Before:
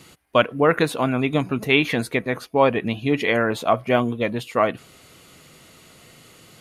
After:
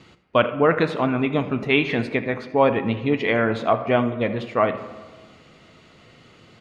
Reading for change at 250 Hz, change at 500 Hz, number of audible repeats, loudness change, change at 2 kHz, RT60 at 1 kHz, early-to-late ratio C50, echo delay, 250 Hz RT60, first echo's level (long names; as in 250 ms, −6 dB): 0.0 dB, 0.0 dB, 1, −0.5 dB, −1.5 dB, 1.4 s, 11.5 dB, 81 ms, 1.7 s, −17.5 dB